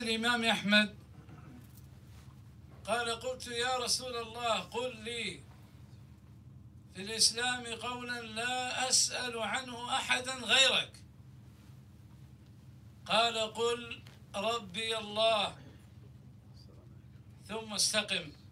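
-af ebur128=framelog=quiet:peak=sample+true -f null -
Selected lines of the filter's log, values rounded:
Integrated loudness:
  I:         -31.4 LUFS
  Threshold: -43.5 LUFS
Loudness range:
  LRA:         6.3 LU
  Threshold: -53.7 LUFS
  LRA low:   -36.6 LUFS
  LRA high:  -30.2 LUFS
Sample peak:
  Peak:      -12.7 dBFS
True peak:
  Peak:      -12.4 dBFS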